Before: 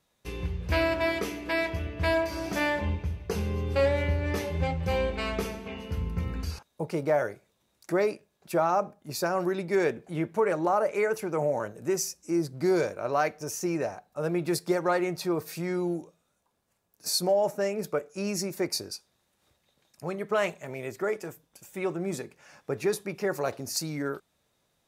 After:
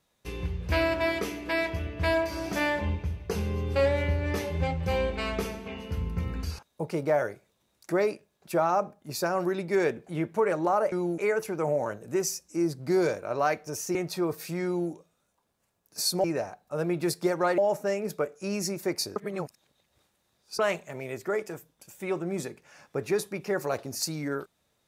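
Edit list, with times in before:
13.69–15.03 s: move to 17.32 s
15.73–15.99 s: copy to 10.92 s
18.90–20.33 s: reverse

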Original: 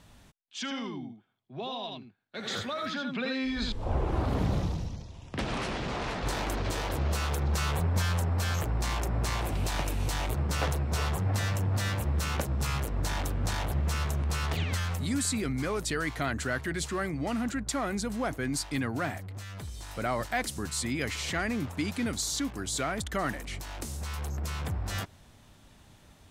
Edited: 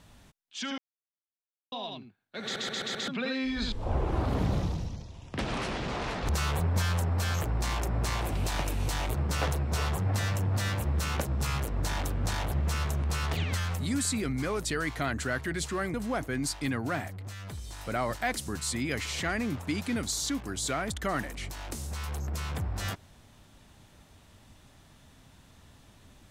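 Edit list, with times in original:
0.78–1.72 s: mute
2.43 s: stutter in place 0.13 s, 5 plays
6.29–7.49 s: delete
17.14–18.04 s: delete

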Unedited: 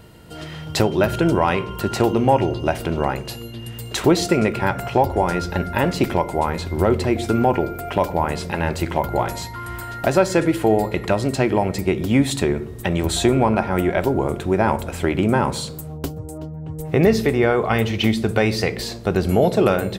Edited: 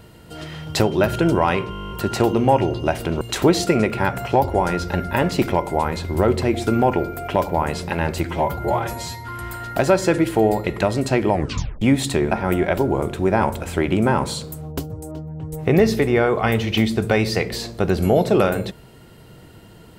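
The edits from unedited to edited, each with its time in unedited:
1.71 s: stutter 0.02 s, 11 plays
3.01–3.83 s: delete
8.87–9.56 s: stretch 1.5×
11.60 s: tape stop 0.49 s
12.59–13.58 s: delete

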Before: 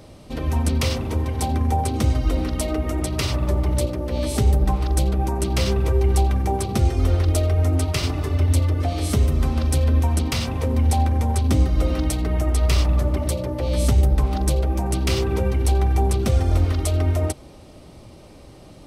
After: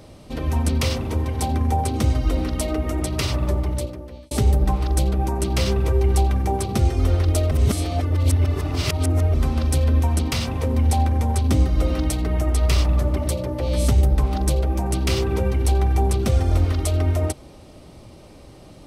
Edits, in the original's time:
3.46–4.31 s: fade out
7.51–9.34 s: reverse

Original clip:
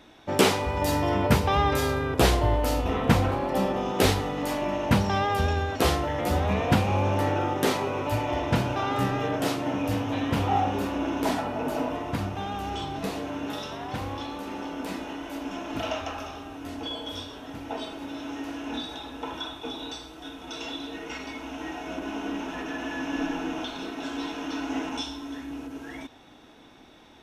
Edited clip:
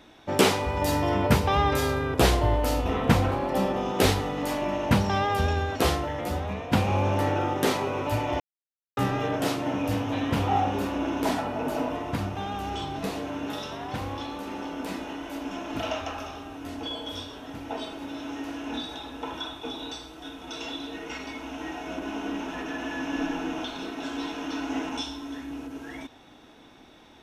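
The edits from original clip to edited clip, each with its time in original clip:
5.76–6.73 s: fade out, to -10.5 dB
8.40–8.97 s: mute

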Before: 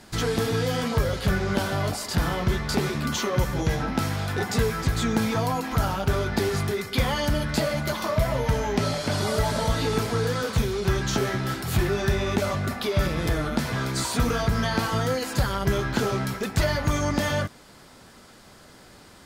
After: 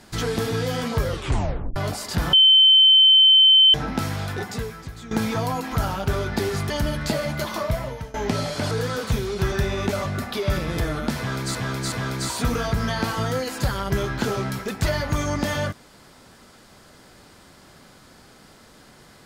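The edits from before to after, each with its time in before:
1.08 s: tape stop 0.68 s
2.33–3.74 s: bleep 3.08 kHz -10 dBFS
4.25–5.11 s: fade out quadratic, to -14.5 dB
6.70–7.18 s: delete
8.09–8.62 s: fade out, to -21 dB
9.19–10.17 s: delete
10.98–12.01 s: delete
13.67–14.04 s: loop, 3 plays

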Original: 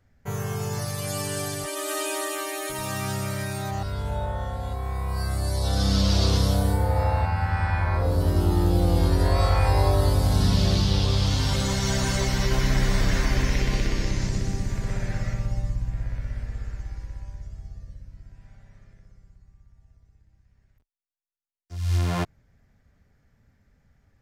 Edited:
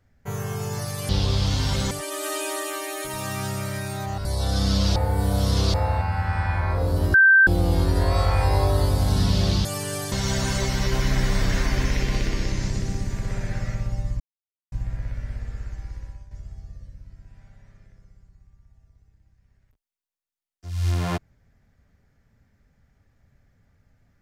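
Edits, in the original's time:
1.09–1.56 s: swap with 10.89–11.71 s
3.90–5.49 s: delete
6.20–6.98 s: reverse
8.38–8.71 s: bleep 1.56 kHz -10.5 dBFS
15.79 s: insert silence 0.52 s
17.12–17.38 s: fade out, to -10.5 dB

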